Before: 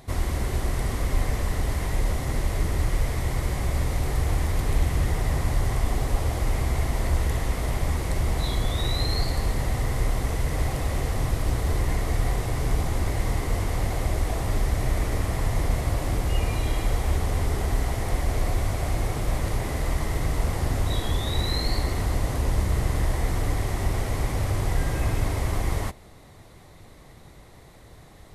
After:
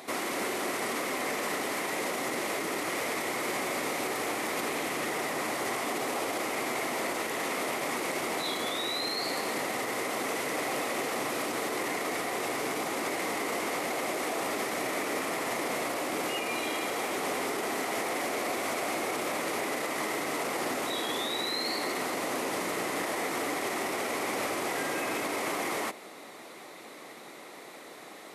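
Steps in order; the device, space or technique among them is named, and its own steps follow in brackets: laptop speaker (high-pass 260 Hz 24 dB/octave; peaking EQ 1.3 kHz +4 dB 0.25 oct; peaking EQ 2.4 kHz +5 dB 0.46 oct; peak limiter -29 dBFS, peak gain reduction 10.5 dB); trim +6 dB

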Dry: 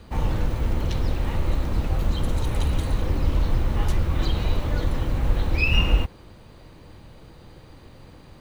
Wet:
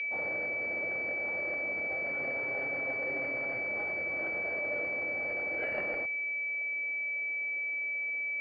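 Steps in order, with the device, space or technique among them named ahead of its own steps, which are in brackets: 2.05–3.61 s: comb 7.4 ms, depth 70%; toy sound module (decimation joined by straight lines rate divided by 8×; class-D stage that switches slowly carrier 2.3 kHz; cabinet simulation 530–4600 Hz, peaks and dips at 610 Hz +9 dB, 980 Hz -10 dB, 1.7 kHz +6 dB, 3 kHz +7 dB); trim -4 dB

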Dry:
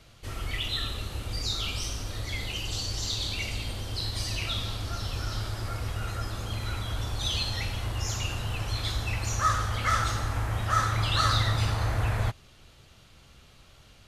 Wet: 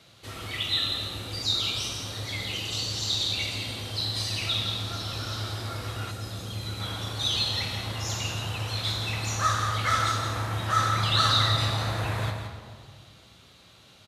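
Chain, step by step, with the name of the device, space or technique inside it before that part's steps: PA in a hall (high-pass 130 Hz 12 dB/octave; peaking EQ 3.8 kHz +7 dB 0.26 oct; delay 168 ms -8.5 dB; reverberation RT60 2.0 s, pre-delay 6 ms, DRR 5.5 dB); 6.11–6.80 s: peaking EQ 1.3 kHz -7.5 dB 2.3 oct

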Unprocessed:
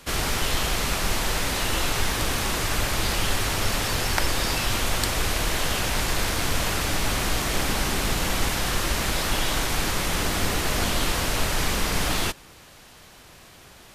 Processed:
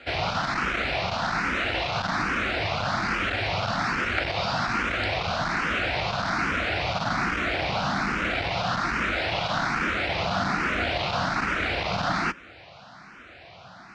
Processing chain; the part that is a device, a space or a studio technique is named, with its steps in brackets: barber-pole phaser into a guitar amplifier (barber-pole phaser +1.2 Hz; saturation -23 dBFS, distortion -15 dB; cabinet simulation 86–4400 Hz, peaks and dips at 190 Hz +3 dB, 420 Hz -5 dB, 700 Hz +7 dB, 1.4 kHz +8 dB, 2.3 kHz +4 dB, 3.3 kHz -4 dB); trim +4 dB

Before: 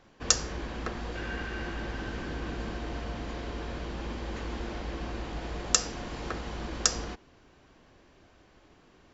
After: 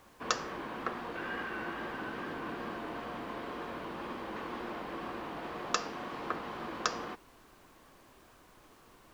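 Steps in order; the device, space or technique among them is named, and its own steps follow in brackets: horn gramophone (band-pass 200–3300 Hz; peaking EQ 1.1 kHz +7 dB 0.6 oct; wow and flutter; pink noise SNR 23 dB); trim -2 dB

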